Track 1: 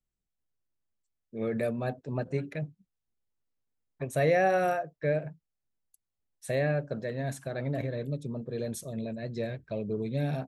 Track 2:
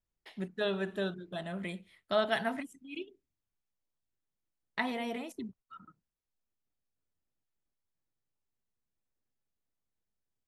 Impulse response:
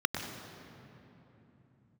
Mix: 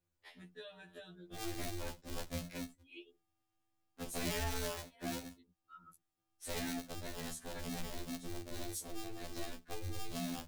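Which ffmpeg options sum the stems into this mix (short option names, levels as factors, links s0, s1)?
-filter_complex "[0:a]aeval=exprs='val(0)*sgn(sin(2*PI*110*n/s))':c=same,volume=1.12,asplit=2[s0][s1];[1:a]equalizer=f=210:t=o:w=1.5:g=-6,acompressor=threshold=0.01:ratio=10,volume=1[s2];[s1]apad=whole_len=461792[s3];[s2][s3]sidechaincompress=threshold=0.00708:ratio=5:attack=11:release=470[s4];[s0][s4]amix=inputs=2:normalize=0,acrossover=split=120|3000[s5][s6][s7];[s6]acompressor=threshold=0.00251:ratio=2[s8];[s5][s8][s7]amix=inputs=3:normalize=0,afftfilt=real='re*2*eq(mod(b,4),0)':imag='im*2*eq(mod(b,4),0)':win_size=2048:overlap=0.75"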